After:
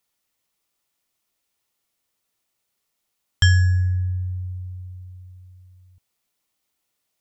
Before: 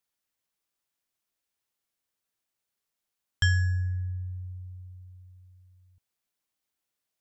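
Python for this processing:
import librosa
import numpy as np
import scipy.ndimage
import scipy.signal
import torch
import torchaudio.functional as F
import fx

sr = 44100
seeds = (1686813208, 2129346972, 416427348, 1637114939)

y = fx.notch(x, sr, hz=1600.0, q=10.0)
y = y * librosa.db_to_amplitude(8.5)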